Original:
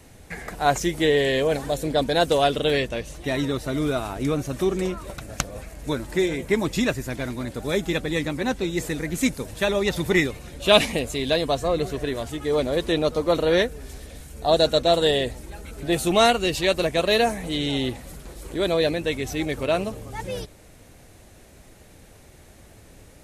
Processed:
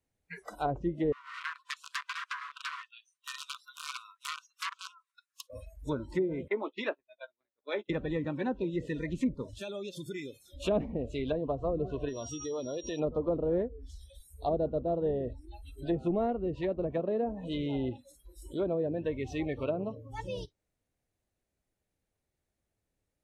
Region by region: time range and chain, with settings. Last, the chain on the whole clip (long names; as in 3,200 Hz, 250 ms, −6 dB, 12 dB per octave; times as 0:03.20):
0:01.12–0:05.50: wrap-around overflow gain 17 dB + linear-phase brick-wall high-pass 970 Hz + expander for the loud parts, over −40 dBFS
0:06.48–0:07.90: noise gate −27 dBFS, range −23 dB + three-way crossover with the lows and the highs turned down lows −20 dB, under 350 Hz, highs −21 dB, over 4,400 Hz + double-tracking delay 14 ms −10 dB
0:09.61–0:10.49: high-shelf EQ 9,500 Hz +9.5 dB + downward compressor 3 to 1, threshold −31 dBFS + notch comb filter 960 Hz
0:12.08–0:12.98: steady tone 5,700 Hz −32 dBFS + downward compressor 4 to 1, threshold −26 dBFS
whole clip: noise reduction from a noise print of the clip's start 29 dB; treble cut that deepens with the level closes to 470 Hz, closed at −18 dBFS; level −6.5 dB